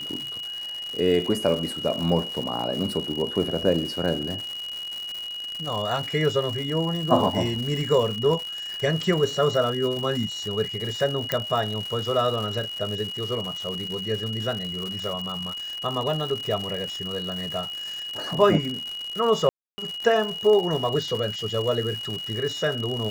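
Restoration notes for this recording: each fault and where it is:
crackle 200 per s -29 dBFS
whine 2.9 kHz -31 dBFS
11.32 s: pop -8 dBFS
19.49–19.78 s: dropout 290 ms

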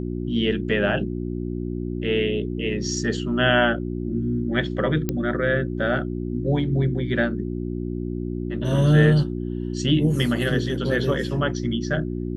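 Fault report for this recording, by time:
hum 60 Hz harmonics 6 -28 dBFS
5.09 s: pop -10 dBFS

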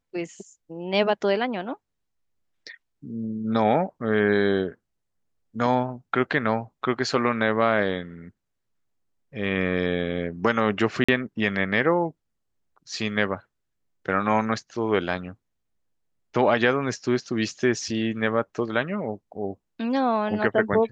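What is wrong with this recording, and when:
11.04–11.09 s: dropout 45 ms

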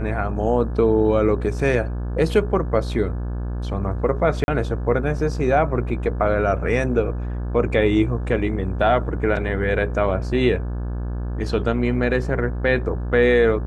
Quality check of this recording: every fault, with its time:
buzz 60 Hz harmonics 29 -26 dBFS
4.44–4.48 s: dropout 41 ms

